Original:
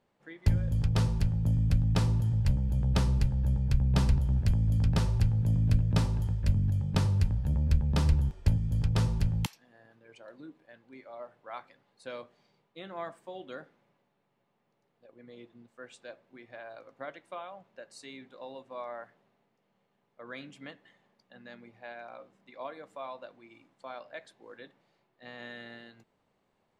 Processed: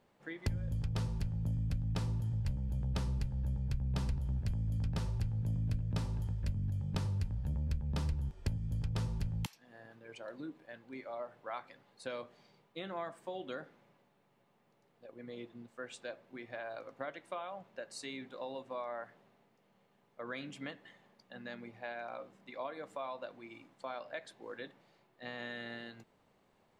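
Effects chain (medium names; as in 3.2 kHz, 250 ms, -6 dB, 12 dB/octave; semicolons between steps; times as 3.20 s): compression 2.5:1, threshold -43 dBFS, peak gain reduction 16.5 dB; trim +4 dB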